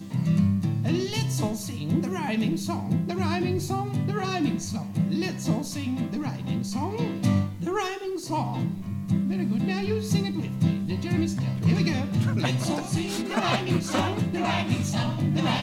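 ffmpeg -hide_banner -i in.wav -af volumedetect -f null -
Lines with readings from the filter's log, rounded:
mean_volume: -25.9 dB
max_volume: -10.6 dB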